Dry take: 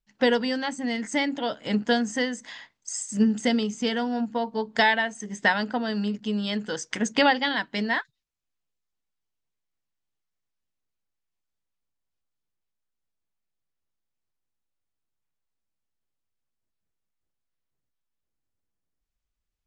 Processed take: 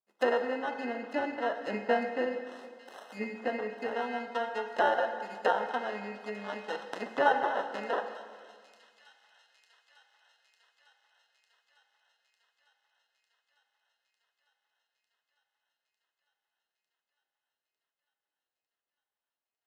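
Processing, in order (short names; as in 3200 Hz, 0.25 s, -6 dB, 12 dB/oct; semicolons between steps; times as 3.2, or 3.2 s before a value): median filter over 9 samples; 0.49–3.12 tilt shelf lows +4.5 dB, about 1100 Hz; sample-and-hold 19×; treble ducked by the level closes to 1800 Hz, closed at -22.5 dBFS; HPF 540 Hz 12 dB/oct; high shelf 4100 Hz -7 dB; thin delay 0.901 s, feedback 71%, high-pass 4000 Hz, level -11 dB; reverb RT60 1.8 s, pre-delay 8 ms, DRR 6.5 dB; gain -1.5 dB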